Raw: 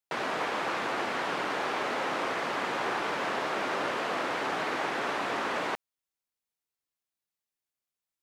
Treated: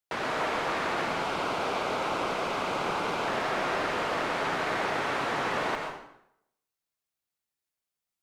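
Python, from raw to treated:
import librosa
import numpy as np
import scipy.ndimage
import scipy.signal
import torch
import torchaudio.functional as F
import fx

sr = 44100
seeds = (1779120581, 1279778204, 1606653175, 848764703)

y = fx.octave_divider(x, sr, octaves=1, level_db=-5.0)
y = fx.peak_eq(y, sr, hz=1800.0, db=-11.5, octaves=0.23, at=(1.07, 3.28))
y = fx.rev_plate(y, sr, seeds[0], rt60_s=0.77, hf_ratio=0.8, predelay_ms=100, drr_db=3.0)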